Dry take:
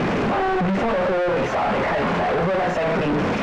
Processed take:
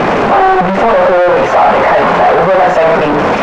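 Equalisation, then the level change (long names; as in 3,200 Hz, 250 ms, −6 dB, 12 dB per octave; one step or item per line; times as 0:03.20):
low-shelf EQ 69 Hz +8.5 dB
parametric band 790 Hz +14.5 dB 2.8 octaves
high-shelf EQ 2,700 Hz +9 dB
0.0 dB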